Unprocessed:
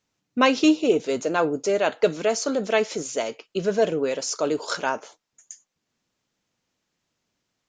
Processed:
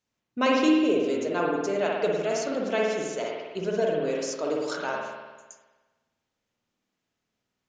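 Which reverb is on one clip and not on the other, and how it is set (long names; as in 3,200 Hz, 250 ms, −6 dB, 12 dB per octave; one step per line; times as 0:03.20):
spring reverb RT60 1.3 s, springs 51 ms, chirp 65 ms, DRR −2 dB
level −7.5 dB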